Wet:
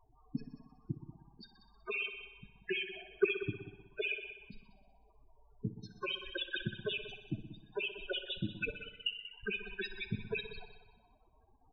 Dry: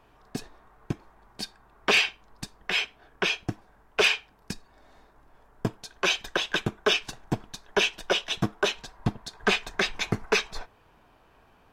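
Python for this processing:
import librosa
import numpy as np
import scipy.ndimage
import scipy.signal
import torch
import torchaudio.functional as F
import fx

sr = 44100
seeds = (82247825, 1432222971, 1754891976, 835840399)

y = fx.level_steps(x, sr, step_db=15)
y = fx.freq_invert(y, sr, carrier_hz=3000, at=(8.62, 9.33))
y = fx.spec_topn(y, sr, count=8)
y = fx.small_body(y, sr, hz=(400.0, 640.0), ring_ms=30, db=16, at=(2.7, 3.43))
y = 10.0 ** (-14.5 / 20.0) * np.tanh(y / 10.0 ** (-14.5 / 20.0))
y = fx.echo_heads(y, sr, ms=62, heads='all three', feedback_pct=41, wet_db=-15.5)
y = fx.rev_schroeder(y, sr, rt60_s=1.2, comb_ms=28, drr_db=17.0)
y = fx.band_squash(y, sr, depth_pct=40, at=(6.56, 6.98))
y = y * librosa.db_to_amplitude(-1.5)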